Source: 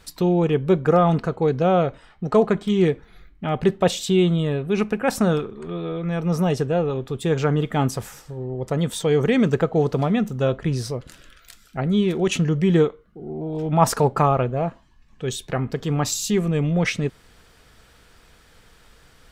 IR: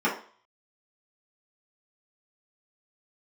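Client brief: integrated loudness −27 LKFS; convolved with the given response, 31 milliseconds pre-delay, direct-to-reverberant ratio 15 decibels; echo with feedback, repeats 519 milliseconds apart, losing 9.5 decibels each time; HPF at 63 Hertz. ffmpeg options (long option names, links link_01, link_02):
-filter_complex "[0:a]highpass=63,aecho=1:1:519|1038|1557|2076:0.335|0.111|0.0365|0.012,asplit=2[link_01][link_02];[1:a]atrim=start_sample=2205,adelay=31[link_03];[link_02][link_03]afir=irnorm=-1:irlink=0,volume=-29dB[link_04];[link_01][link_04]amix=inputs=2:normalize=0,volume=-5.5dB"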